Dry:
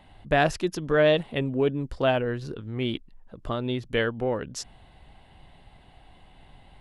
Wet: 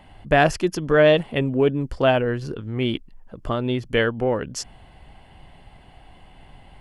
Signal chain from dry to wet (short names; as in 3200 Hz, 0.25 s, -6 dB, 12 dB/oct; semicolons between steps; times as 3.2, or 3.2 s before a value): notch 3800 Hz, Q 6.7; gain +5 dB